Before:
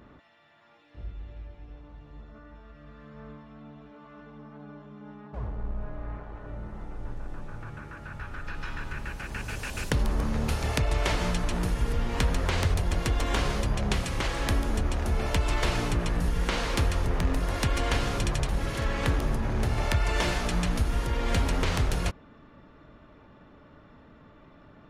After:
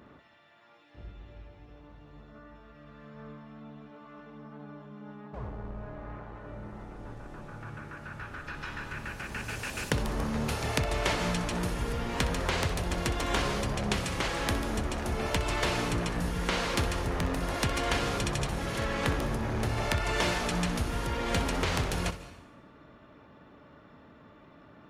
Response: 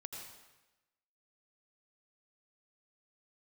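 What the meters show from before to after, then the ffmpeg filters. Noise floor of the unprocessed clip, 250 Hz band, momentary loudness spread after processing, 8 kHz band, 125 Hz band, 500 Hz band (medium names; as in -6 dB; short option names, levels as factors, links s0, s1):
-54 dBFS, -0.5 dB, 18 LU, +0.5 dB, -4.5 dB, 0.0 dB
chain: -filter_complex "[0:a]highpass=f=120:p=1,asplit=2[s0][s1];[1:a]atrim=start_sample=2205,adelay=63[s2];[s1][s2]afir=irnorm=-1:irlink=0,volume=0.376[s3];[s0][s3]amix=inputs=2:normalize=0"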